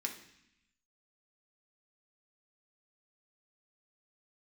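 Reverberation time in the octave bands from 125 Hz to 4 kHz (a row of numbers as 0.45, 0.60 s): 1.1, 1.1, 0.70, 0.80, 1.1, 1.0 s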